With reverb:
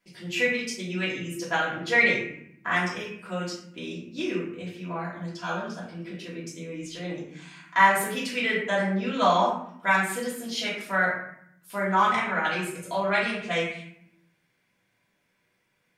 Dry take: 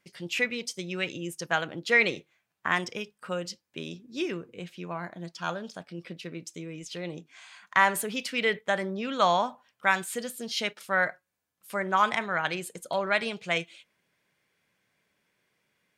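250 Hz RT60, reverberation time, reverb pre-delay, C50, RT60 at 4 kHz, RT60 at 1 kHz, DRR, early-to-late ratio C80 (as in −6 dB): 1.1 s, 0.65 s, 3 ms, 3.5 dB, 0.45 s, 0.65 s, −8.0 dB, 6.5 dB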